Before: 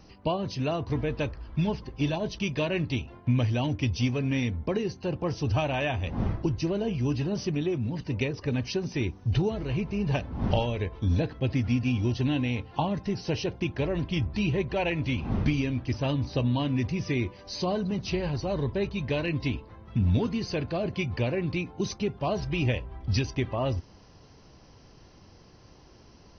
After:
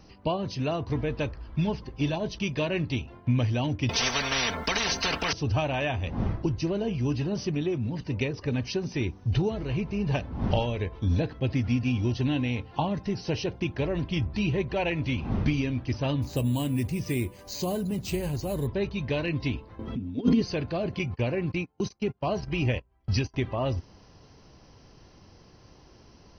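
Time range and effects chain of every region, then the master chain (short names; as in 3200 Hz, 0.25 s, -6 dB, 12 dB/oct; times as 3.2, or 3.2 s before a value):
3.89–5.33 comb 4.4 ms, depth 98% + spectral compressor 10:1
16.22–18.67 careless resampling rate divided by 4×, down none, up hold + dynamic EQ 1200 Hz, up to -5 dB, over -44 dBFS, Q 0.79
19.79–20.42 bell 440 Hz +8 dB 0.53 oct + negative-ratio compressor -30 dBFS, ratio -0.5 + small resonant body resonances 260/3200 Hz, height 18 dB, ringing for 85 ms
20.99–23.34 gate -33 dBFS, range -27 dB + notch 3600 Hz, Q 8.3 + mismatched tape noise reduction encoder only
whole clip: dry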